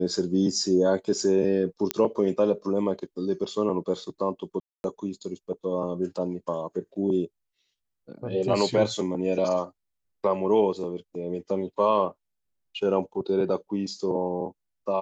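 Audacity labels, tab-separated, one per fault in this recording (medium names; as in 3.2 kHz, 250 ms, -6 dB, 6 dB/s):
1.910000	1.910000	pop -7 dBFS
4.600000	4.840000	dropout 241 ms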